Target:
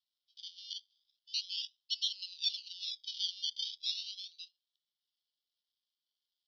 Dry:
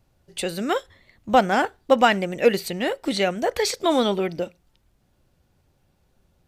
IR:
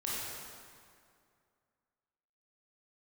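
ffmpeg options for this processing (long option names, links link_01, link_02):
-filter_complex "[0:a]acrusher=samples=26:mix=1:aa=0.000001:lfo=1:lforange=15.6:lforate=0.37,asettb=1/sr,asplit=3[link_01][link_02][link_03];[link_01]atrim=end=2.194[link_04];[link_02]atrim=start=2.19:end=3.94,asetpts=PTS-STARTPTS,afade=type=in:duration=0.004:curve=qsin,afade=type=out:start_time=1.746:duration=0.004:curve=qsin,acontrast=37[link_05];[link_03]atrim=start=3.936[link_06];[link_04][link_05]acrossfade=duration=0.004:curve1=hsin:curve2=qsin[link_07];[link_07][link_06]acrossfade=duration=0.004:curve1=qsin:curve2=hsin,asuperpass=centerf=4100:order=12:qfactor=1.6,volume=-6dB"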